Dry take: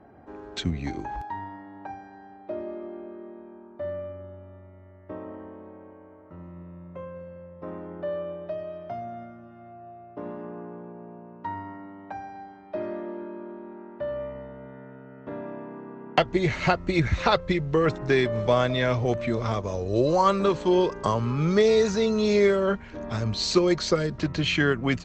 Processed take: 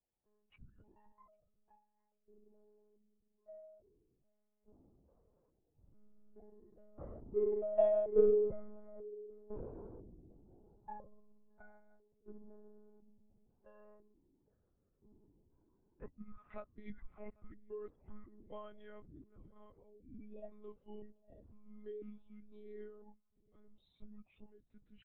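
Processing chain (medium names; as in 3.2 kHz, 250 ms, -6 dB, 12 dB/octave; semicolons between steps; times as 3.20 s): pitch shift switched off and on -8 st, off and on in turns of 462 ms; Doppler pass-by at 8.33 s, 29 m/s, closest 12 m; on a send: feedback delay 801 ms, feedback 31%, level -19 dB; on the sum: monotone LPC vocoder at 8 kHz 210 Hz; spectral contrast expander 1.5:1; trim +8 dB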